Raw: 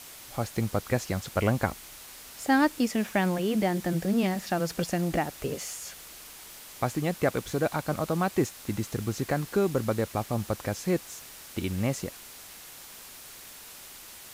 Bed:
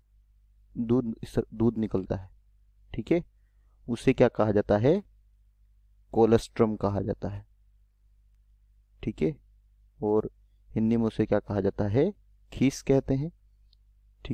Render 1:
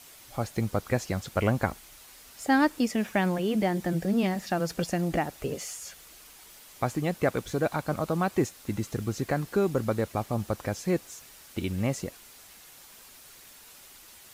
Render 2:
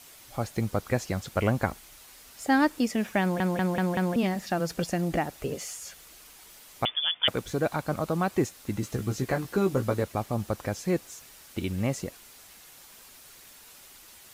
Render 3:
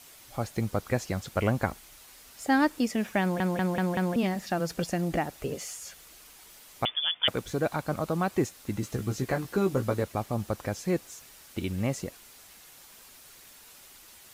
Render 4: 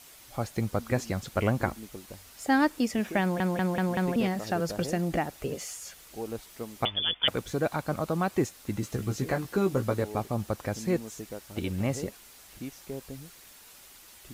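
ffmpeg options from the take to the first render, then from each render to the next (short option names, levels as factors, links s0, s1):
-af "afftdn=nr=6:nf=-47"
-filter_complex "[0:a]asettb=1/sr,asplit=3[s0][s1][s2];[s0]atrim=end=6.854[s3];[s1]atrim=start=6.85:end=7.28,asetpts=PTS-STARTPTS,afade=t=in:d=0.004:c=qsin,afade=t=out:st=0.426:d=0.004:c=qsin,lowpass=f=3100:t=q:w=0.5098,lowpass=f=3100:t=q:w=0.6013,lowpass=f=3100:t=q:w=0.9,lowpass=f=3100:t=q:w=2.563,afreqshift=-3600[s4];[s2]atrim=start=7.276[s5];[s3][s4]acrossfade=d=0.004:c1=hsin:c2=qsin[s6];[s6][s5]acrossfade=d=0.004:c1=qsin:c2=hsin,asettb=1/sr,asplit=3[s7][s8][s9];[s7]atrim=end=8.814[s10];[s8]atrim=start=8.81:end=10.03,asetpts=PTS-STARTPTS,afade=t=in:d=0.004:c=qsin,afade=t=out:st=1.216:d=0.004:c=qsin,asplit=2[s11][s12];[s12]adelay=16,volume=0.562[s13];[s11][s13]amix=inputs=2:normalize=0,atrim=end_sample=53802[s14];[s9]atrim=start=10.026[s15];[s10][s14]acrossfade=d=0.004:c1=hsin:c2=qsin[s16];[s16][s15]acrossfade=d=0.004:c1=qsin:c2=hsin,asplit=6[s17][s18][s19][s20][s21][s22];[s17]atrim=end=3.402[s23];[s18]atrim=start=3.208:end=3.402[s24];[s19]atrim=start=3.208:end=3.402[s25];[s20]atrim=start=3.208:end=3.402[s26];[s21]atrim=start=3.208:end=3.402[s27];[s22]atrim=start=4.158[s28];[s23][s24]acrossfade=d=0.004:c1=hsin:c2=hsin[s29];[s29][s25]acrossfade=d=0.004:c1=hsin:c2=hsin[s30];[s30][s26]acrossfade=d=0.004:c1=hsin:c2=hsin[s31];[s31][s27]acrossfade=d=0.004:c1=hsin:c2=hsin[s32];[s32][s28]acrossfade=d=0.004:c1=hsin:c2=hsin"
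-af "volume=0.891"
-filter_complex "[1:a]volume=0.168[s0];[0:a][s0]amix=inputs=2:normalize=0"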